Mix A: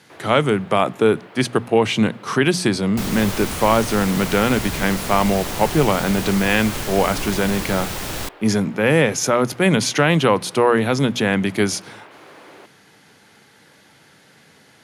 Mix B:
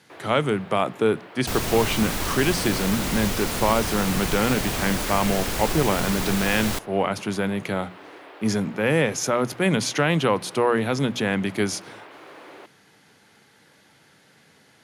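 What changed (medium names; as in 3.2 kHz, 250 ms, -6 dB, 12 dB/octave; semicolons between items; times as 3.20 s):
speech -5.0 dB; second sound: entry -1.50 s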